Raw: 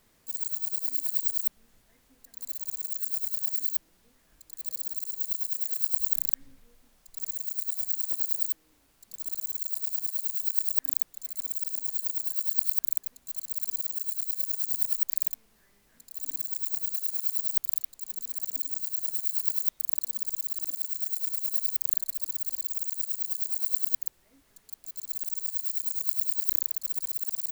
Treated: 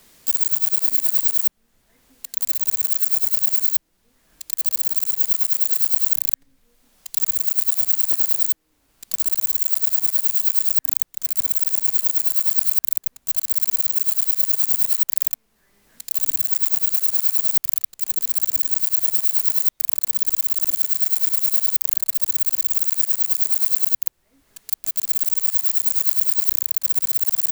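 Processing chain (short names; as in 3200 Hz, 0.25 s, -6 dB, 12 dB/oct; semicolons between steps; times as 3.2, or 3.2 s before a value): sample leveller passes 3; three-band squash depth 70%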